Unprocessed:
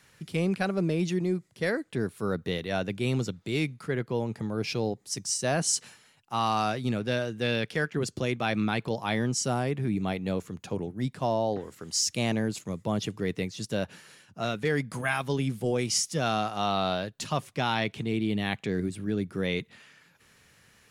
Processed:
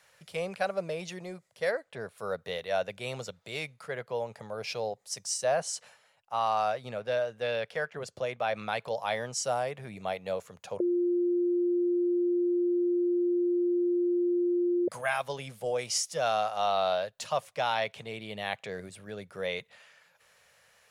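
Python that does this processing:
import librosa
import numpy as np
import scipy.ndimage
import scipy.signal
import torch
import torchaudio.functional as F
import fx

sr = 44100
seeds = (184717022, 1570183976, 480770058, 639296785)

y = fx.high_shelf(x, sr, hz=5400.0, db=-8.0, at=(1.71, 2.18))
y = fx.high_shelf(y, sr, hz=3100.0, db=-7.5, at=(5.44, 8.56))
y = fx.edit(y, sr, fx.bleep(start_s=10.8, length_s=4.08, hz=351.0, db=-7.5), tone=tone)
y = fx.low_shelf_res(y, sr, hz=420.0, db=-10.0, q=3.0)
y = y * 10.0 ** (-3.0 / 20.0)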